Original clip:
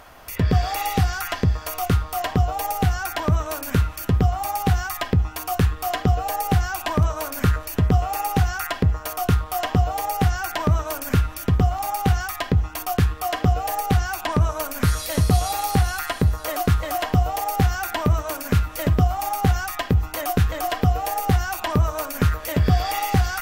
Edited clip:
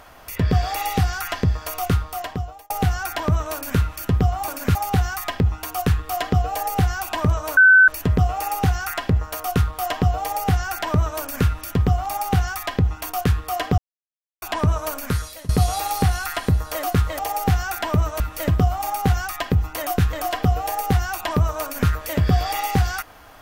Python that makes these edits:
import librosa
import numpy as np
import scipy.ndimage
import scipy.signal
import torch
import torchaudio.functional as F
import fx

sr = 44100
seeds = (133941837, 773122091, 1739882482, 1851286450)

y = fx.edit(x, sr, fx.fade_out_span(start_s=1.93, length_s=0.77),
    fx.bleep(start_s=7.3, length_s=0.31, hz=1520.0, db=-7.5),
    fx.silence(start_s=13.51, length_s=0.64),
    fx.fade_out_to(start_s=14.69, length_s=0.53, floor_db=-22.5),
    fx.cut(start_s=16.92, length_s=0.39),
    fx.move(start_s=18.32, length_s=0.27, to_s=4.48), tone=tone)